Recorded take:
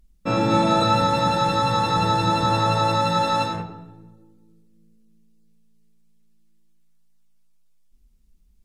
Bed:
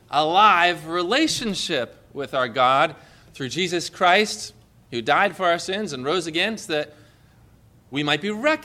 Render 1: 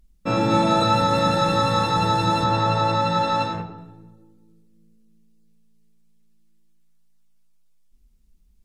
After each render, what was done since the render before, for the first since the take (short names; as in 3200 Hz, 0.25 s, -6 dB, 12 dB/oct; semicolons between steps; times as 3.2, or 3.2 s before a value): 1.07–1.85 doubler 36 ms -7 dB; 2.44–3.78 air absorption 69 m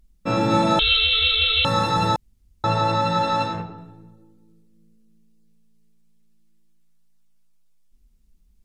0.79–1.65 inverted band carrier 4000 Hz; 2.16–2.64 room tone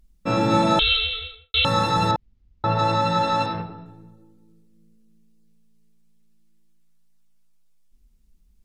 0.81–1.54 studio fade out; 2.11–2.79 air absorption 190 m; 3.46–3.86 steep low-pass 5900 Hz 96 dB/oct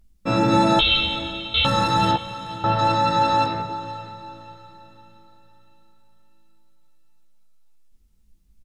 doubler 15 ms -5.5 dB; diffused feedback echo 0.507 s, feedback 41%, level -14 dB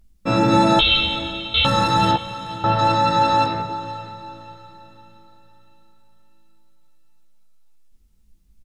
gain +2 dB